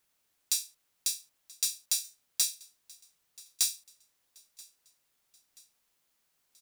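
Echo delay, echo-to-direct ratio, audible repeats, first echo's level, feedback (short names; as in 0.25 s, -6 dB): 0.981 s, -22.5 dB, 2, -23.5 dB, 47%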